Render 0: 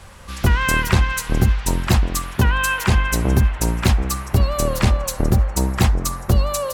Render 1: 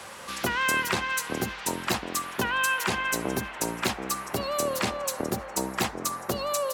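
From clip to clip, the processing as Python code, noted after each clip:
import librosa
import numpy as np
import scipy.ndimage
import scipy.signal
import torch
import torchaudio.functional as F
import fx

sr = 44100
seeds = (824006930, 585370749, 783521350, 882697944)

y = scipy.signal.sosfilt(scipy.signal.butter(2, 290.0, 'highpass', fs=sr, output='sos'), x)
y = fx.band_squash(y, sr, depth_pct=40)
y = y * 10.0 ** (-4.5 / 20.0)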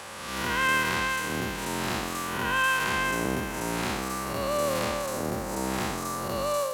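y = fx.spec_blur(x, sr, span_ms=209.0)
y = fx.low_shelf(y, sr, hz=140.0, db=5.0)
y = fx.transient(y, sr, attack_db=-1, sustain_db=-5)
y = y * 10.0 ** (3.5 / 20.0)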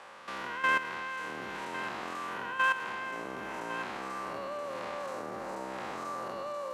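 y = fx.level_steps(x, sr, step_db=12)
y = fx.bandpass_q(y, sr, hz=990.0, q=0.55)
y = y + 10.0 ** (-11.5 / 20.0) * np.pad(y, (int(1103 * sr / 1000.0), 0))[:len(y)]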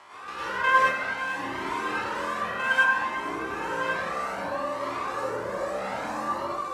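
y = fx.rev_plate(x, sr, seeds[0], rt60_s=0.69, hf_ratio=0.5, predelay_ms=90, drr_db=-7.5)
y = fx.comb_cascade(y, sr, direction='rising', hz=0.62)
y = y * 10.0 ** (4.0 / 20.0)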